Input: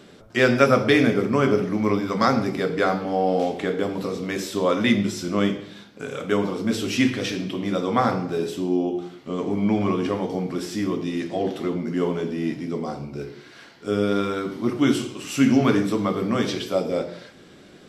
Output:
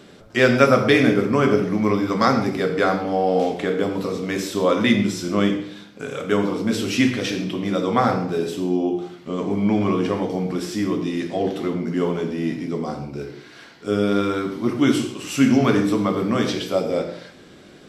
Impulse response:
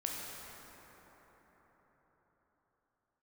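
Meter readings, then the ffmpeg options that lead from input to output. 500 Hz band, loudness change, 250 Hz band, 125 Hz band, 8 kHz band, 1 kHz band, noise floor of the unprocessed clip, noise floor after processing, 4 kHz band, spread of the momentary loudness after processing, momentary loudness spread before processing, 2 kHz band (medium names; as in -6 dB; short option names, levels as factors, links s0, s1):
+2.0 dB, +2.0 dB, +2.0 dB, +2.0 dB, +2.0 dB, +2.0 dB, -48 dBFS, -45 dBFS, +2.0 dB, 10 LU, 11 LU, +2.0 dB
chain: -filter_complex "[0:a]asplit=2[s0][s1];[1:a]atrim=start_sample=2205,atrim=end_sample=6174[s2];[s1][s2]afir=irnorm=-1:irlink=0,volume=0.794[s3];[s0][s3]amix=inputs=2:normalize=0,volume=0.75"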